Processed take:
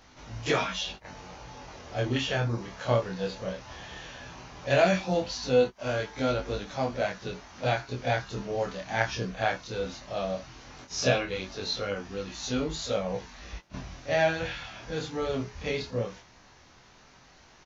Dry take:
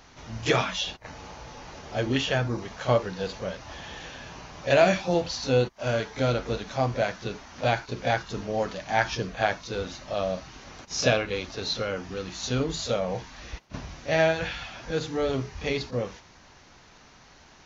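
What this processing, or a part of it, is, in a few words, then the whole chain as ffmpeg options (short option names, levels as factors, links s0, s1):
double-tracked vocal: -filter_complex "[0:a]asplit=2[s0][s1];[s1]adelay=16,volume=0.282[s2];[s0][s2]amix=inputs=2:normalize=0,flanger=delay=19.5:depth=7.2:speed=0.16"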